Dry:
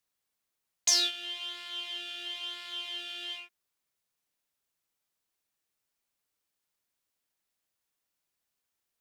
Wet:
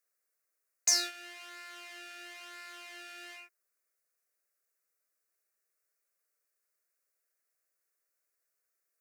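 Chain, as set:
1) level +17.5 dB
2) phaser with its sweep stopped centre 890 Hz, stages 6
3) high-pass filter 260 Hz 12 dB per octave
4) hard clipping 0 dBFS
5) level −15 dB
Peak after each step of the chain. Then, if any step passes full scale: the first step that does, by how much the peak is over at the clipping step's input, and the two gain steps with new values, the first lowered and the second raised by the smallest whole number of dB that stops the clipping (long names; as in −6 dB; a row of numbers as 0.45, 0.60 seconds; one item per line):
+7.0, +4.5, +4.5, 0.0, −15.0 dBFS
step 1, 4.5 dB
step 1 +12.5 dB, step 5 −10 dB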